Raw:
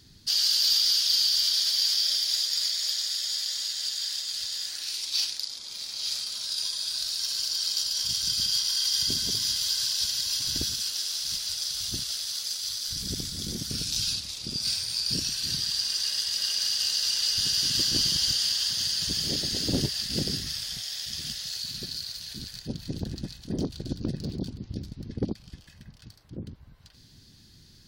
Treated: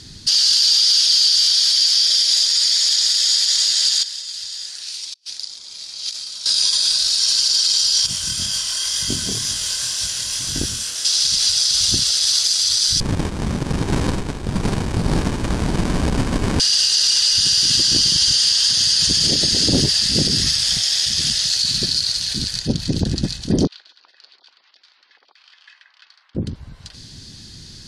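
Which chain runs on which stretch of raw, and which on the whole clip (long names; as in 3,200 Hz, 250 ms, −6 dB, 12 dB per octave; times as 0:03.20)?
0:04.03–0:06.46: mains-hum notches 60/120/180/240/300/360/420 Hz + noise gate −28 dBFS, range −21 dB + compressor whose output falls as the input rises −47 dBFS, ratio −0.5
0:08.06–0:11.05: parametric band 4,500 Hz −12.5 dB 1 octave + chorus effect 2 Hz, delay 20 ms, depth 6.3 ms
0:13.00–0:16.60: high-shelf EQ 7,600 Hz −2.5 dB + windowed peak hold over 65 samples
0:23.67–0:26.35: downward compressor 5 to 1, threshold −38 dBFS + high-pass filter 1,100 Hz 24 dB per octave + high-frequency loss of the air 310 metres
whole clip: low-pass filter 9,300 Hz 24 dB per octave; high-shelf EQ 5,400 Hz +6 dB; boost into a limiter +20 dB; level −6 dB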